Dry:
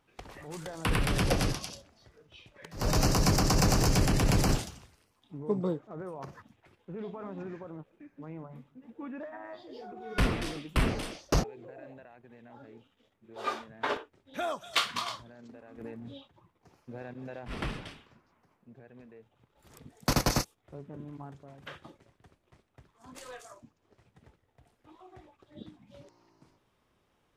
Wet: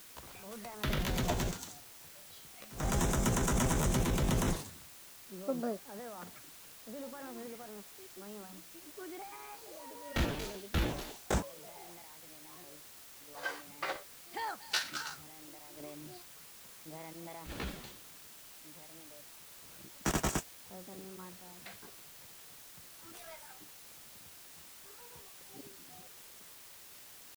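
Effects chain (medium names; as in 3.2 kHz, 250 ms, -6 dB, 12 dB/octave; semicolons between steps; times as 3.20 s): pitch shift +4.5 st; word length cut 8-bit, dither triangular; trim -5.5 dB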